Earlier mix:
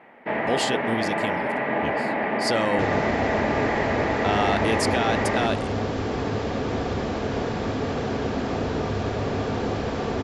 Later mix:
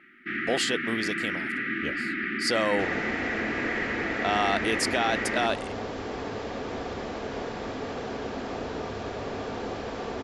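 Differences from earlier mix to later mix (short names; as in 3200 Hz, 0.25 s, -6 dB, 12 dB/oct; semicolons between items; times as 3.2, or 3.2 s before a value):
first sound: add brick-wall FIR band-stop 390–1200 Hz; second sound -5.0 dB; master: add bell 110 Hz -9 dB 2 oct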